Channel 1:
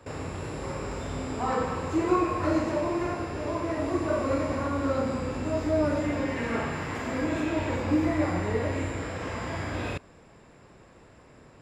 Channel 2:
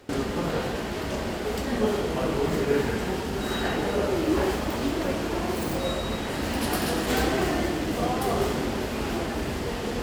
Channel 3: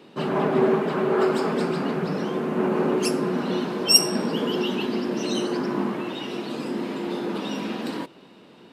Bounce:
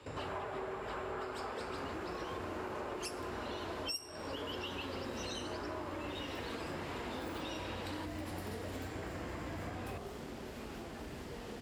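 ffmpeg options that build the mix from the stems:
-filter_complex "[0:a]acrossover=split=83|2800[a][b][c];[a]acompressor=threshold=-44dB:ratio=4[d];[b]acompressor=threshold=-37dB:ratio=4[e];[c]acompressor=threshold=-58dB:ratio=4[f];[d][e][f]amix=inputs=3:normalize=0,volume=-5dB[g];[1:a]acompressor=threshold=-33dB:ratio=5,adelay=1650,volume=-10dB[h];[2:a]highpass=600,volume=-6dB[i];[g][h][i]amix=inputs=3:normalize=0,acompressor=threshold=-37dB:ratio=20"

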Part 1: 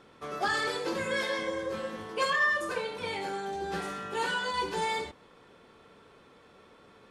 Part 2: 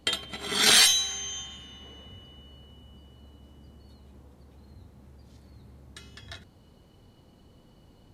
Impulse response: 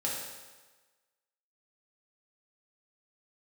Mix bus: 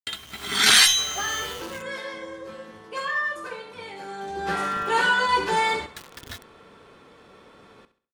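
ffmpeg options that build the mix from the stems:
-filter_complex "[0:a]adelay=750,volume=-4dB,afade=t=in:st=3.98:d=0.65:silence=0.298538,asplit=2[a][b];[b]volume=-14dB[c];[1:a]equalizer=f=570:w=1.3:g=-7.5,acrusher=bits=6:mix=0:aa=0.000001,volume=-6.5dB,asplit=3[d][e][f];[d]atrim=end=1.82,asetpts=PTS-STARTPTS,afade=t=out:st=1.816:d=0.004:c=hsin[g];[e]atrim=start=1.82:end=4.5,asetpts=PTS-STARTPTS,volume=0[h];[f]atrim=start=4.5,asetpts=PTS-STARTPTS,afade=t=in:d=0.004:c=hsin[i];[g][h][i]concat=n=3:v=0:a=1[j];[c]aecho=0:1:67|134|201|268|335:1|0.37|0.137|0.0507|0.0187[k];[a][j][k]amix=inputs=3:normalize=0,adynamicequalizer=threshold=0.00447:dfrequency=1400:dqfactor=0.73:tfrequency=1400:tqfactor=0.73:attack=5:release=100:ratio=0.375:range=3:mode=boostabove:tftype=bell,dynaudnorm=f=230:g=3:m=9.5dB"

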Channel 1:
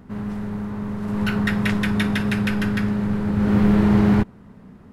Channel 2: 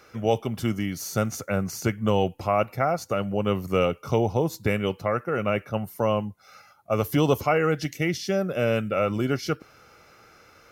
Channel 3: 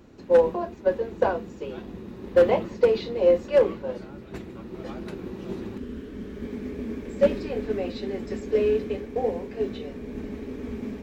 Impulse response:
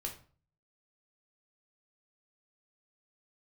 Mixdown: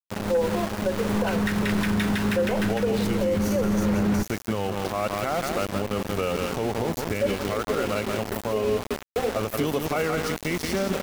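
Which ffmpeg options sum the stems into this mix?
-filter_complex "[0:a]acontrast=44,volume=-4.5dB[a];[1:a]acompressor=mode=upward:threshold=-40dB:ratio=2.5,adelay=2450,volume=1dB,asplit=2[b][c];[c]volume=-6.5dB[d];[2:a]volume=2dB,asplit=2[e][f];[f]volume=-18dB[g];[d][g]amix=inputs=2:normalize=0,aecho=0:1:171:1[h];[a][b][e][h]amix=inputs=4:normalize=0,equalizer=f=130:t=o:w=0.26:g=-10.5,aeval=exprs='val(0)*gte(abs(val(0)),0.0562)':c=same,alimiter=limit=-16dB:level=0:latency=1:release=80"

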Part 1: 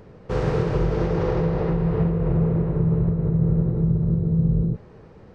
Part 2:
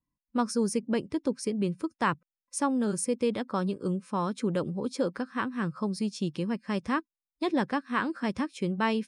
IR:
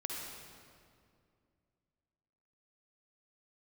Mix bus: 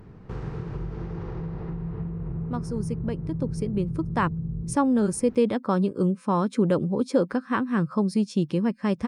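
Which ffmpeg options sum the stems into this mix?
-filter_complex "[0:a]equalizer=f=540:t=o:w=0.72:g=-12.5,acompressor=threshold=-40dB:ratio=2,volume=2dB[a];[1:a]dynaudnorm=f=210:g=17:m=12.5dB,adelay=2150,volume=-4dB[b];[a][b]amix=inputs=2:normalize=0,lowpass=f=1.1k:p=1,aemphasis=mode=production:type=50fm"

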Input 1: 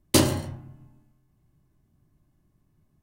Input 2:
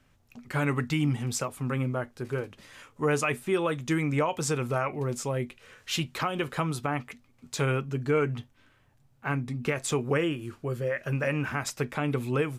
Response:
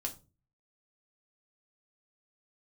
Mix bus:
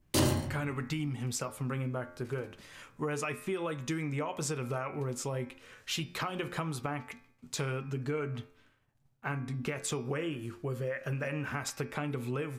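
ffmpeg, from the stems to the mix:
-filter_complex "[0:a]alimiter=limit=-15dB:level=0:latency=1:release=10,volume=-2dB[a];[1:a]agate=range=-33dB:threshold=-56dB:ratio=3:detection=peak,bandreject=f=87.99:t=h:w=4,bandreject=f=175.98:t=h:w=4,bandreject=f=263.97:t=h:w=4,bandreject=f=351.96:t=h:w=4,bandreject=f=439.95:t=h:w=4,bandreject=f=527.94:t=h:w=4,bandreject=f=615.93:t=h:w=4,bandreject=f=703.92:t=h:w=4,bandreject=f=791.91:t=h:w=4,bandreject=f=879.9:t=h:w=4,bandreject=f=967.89:t=h:w=4,bandreject=f=1.05588k:t=h:w=4,bandreject=f=1.14387k:t=h:w=4,bandreject=f=1.23186k:t=h:w=4,bandreject=f=1.31985k:t=h:w=4,bandreject=f=1.40784k:t=h:w=4,bandreject=f=1.49583k:t=h:w=4,bandreject=f=1.58382k:t=h:w=4,bandreject=f=1.67181k:t=h:w=4,bandreject=f=1.7598k:t=h:w=4,bandreject=f=1.84779k:t=h:w=4,bandreject=f=1.93578k:t=h:w=4,bandreject=f=2.02377k:t=h:w=4,bandreject=f=2.11176k:t=h:w=4,bandreject=f=2.19975k:t=h:w=4,bandreject=f=2.28774k:t=h:w=4,bandreject=f=2.37573k:t=h:w=4,bandreject=f=2.46372k:t=h:w=4,bandreject=f=2.55171k:t=h:w=4,acompressor=threshold=-30dB:ratio=6,volume=-1dB[b];[a][b]amix=inputs=2:normalize=0,bandreject=f=275.3:t=h:w=4,bandreject=f=550.6:t=h:w=4,bandreject=f=825.9:t=h:w=4,bandreject=f=1.1012k:t=h:w=4,bandreject=f=1.3765k:t=h:w=4,bandreject=f=1.6518k:t=h:w=4,bandreject=f=1.9271k:t=h:w=4,bandreject=f=2.2024k:t=h:w=4,bandreject=f=2.4777k:t=h:w=4,bandreject=f=2.753k:t=h:w=4,bandreject=f=3.0283k:t=h:w=4,bandreject=f=3.3036k:t=h:w=4,bandreject=f=3.5789k:t=h:w=4,bandreject=f=3.8542k:t=h:w=4,bandreject=f=4.1295k:t=h:w=4,bandreject=f=4.4048k:t=h:w=4,bandreject=f=4.6801k:t=h:w=4,bandreject=f=4.9554k:t=h:w=4,bandreject=f=5.2307k:t=h:w=4,bandreject=f=5.506k:t=h:w=4,bandreject=f=5.7813k:t=h:w=4"

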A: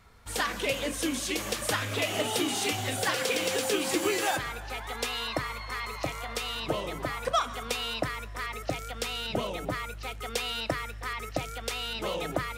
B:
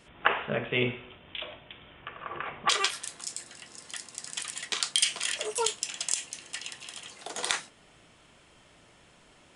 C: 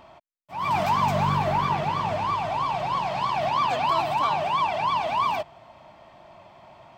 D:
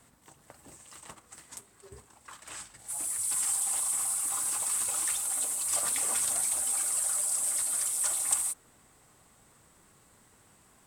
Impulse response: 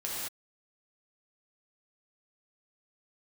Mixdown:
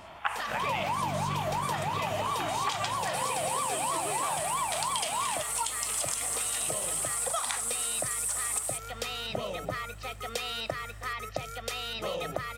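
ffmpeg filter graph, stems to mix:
-filter_complex "[0:a]highpass=75,aecho=1:1:1.6:0.45,volume=-1.5dB[a];[1:a]lowshelf=f=600:t=q:w=3:g=-11.5,volume=1.5dB[b];[2:a]volume=1dB[c];[3:a]adelay=250,volume=2.5dB[d];[a][b][c][d]amix=inputs=4:normalize=0,acompressor=threshold=-28dB:ratio=6"

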